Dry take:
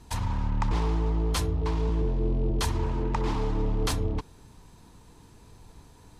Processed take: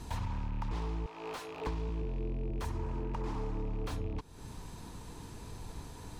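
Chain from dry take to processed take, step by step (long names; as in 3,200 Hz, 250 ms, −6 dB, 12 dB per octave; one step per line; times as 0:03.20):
loose part that buzzes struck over −26 dBFS, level −37 dBFS
0:01.06–0:01.67: high-pass filter 660 Hz 12 dB per octave
0:02.27–0:03.86: dynamic equaliser 3,500 Hz, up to −6 dB, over −51 dBFS, Q 1.1
downward compressor 6 to 1, threshold −40 dBFS, peak gain reduction 16.5 dB
slew-rate limiting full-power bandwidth 11 Hz
level +6 dB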